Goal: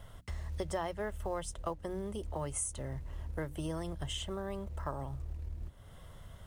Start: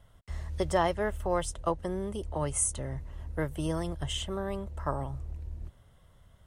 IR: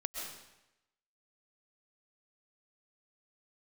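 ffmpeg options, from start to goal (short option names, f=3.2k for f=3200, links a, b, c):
-filter_complex "[0:a]bandreject=f=60:t=h:w=6,bandreject=f=120:t=h:w=6,bandreject=f=180:t=h:w=6,bandreject=f=240:t=h:w=6,bandreject=f=300:t=h:w=6,asplit=2[a][b];[b]acrusher=bits=5:mode=log:mix=0:aa=0.000001,volume=-7.5dB[c];[a][c]amix=inputs=2:normalize=0,acompressor=threshold=-48dB:ratio=2.5,volume=5.5dB"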